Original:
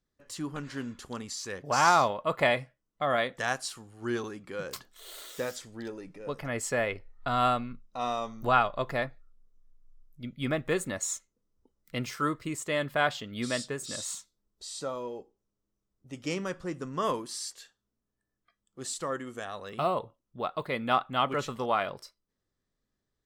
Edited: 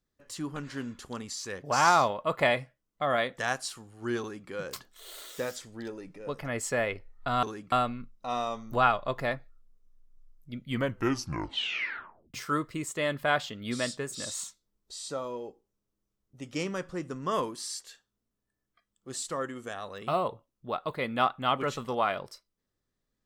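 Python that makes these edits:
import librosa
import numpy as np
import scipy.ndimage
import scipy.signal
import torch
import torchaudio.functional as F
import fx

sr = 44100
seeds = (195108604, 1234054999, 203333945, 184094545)

y = fx.edit(x, sr, fx.duplicate(start_s=4.2, length_s=0.29, to_s=7.43),
    fx.tape_stop(start_s=10.35, length_s=1.7), tone=tone)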